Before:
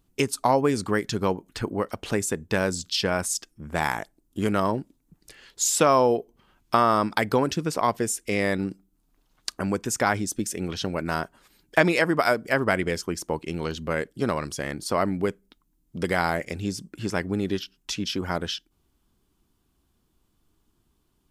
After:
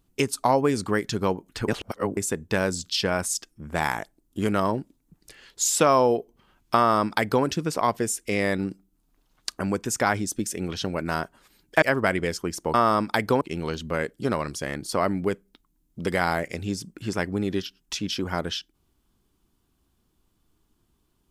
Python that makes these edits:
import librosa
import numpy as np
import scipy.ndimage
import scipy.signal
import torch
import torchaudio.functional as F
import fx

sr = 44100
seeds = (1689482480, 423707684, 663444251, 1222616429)

y = fx.edit(x, sr, fx.reverse_span(start_s=1.68, length_s=0.49),
    fx.duplicate(start_s=6.77, length_s=0.67, to_s=13.38),
    fx.cut(start_s=11.82, length_s=0.64), tone=tone)